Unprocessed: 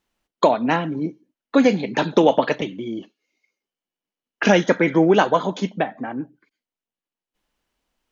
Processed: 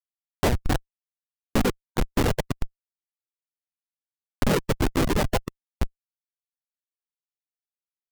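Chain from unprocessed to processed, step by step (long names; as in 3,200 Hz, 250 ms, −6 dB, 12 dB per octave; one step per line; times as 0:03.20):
pitch-shifted copies added −4 semitones −1 dB, +3 semitones −10 dB
comparator with hysteresis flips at −10 dBFS
reverb reduction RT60 1.1 s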